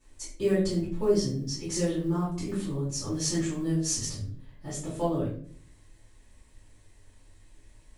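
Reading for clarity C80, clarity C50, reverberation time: 8.5 dB, 3.5 dB, 0.50 s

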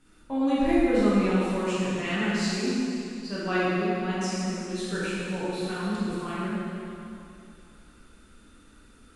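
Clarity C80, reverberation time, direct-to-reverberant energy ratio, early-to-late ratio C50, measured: −2.5 dB, 2.7 s, −10.0 dB, −4.5 dB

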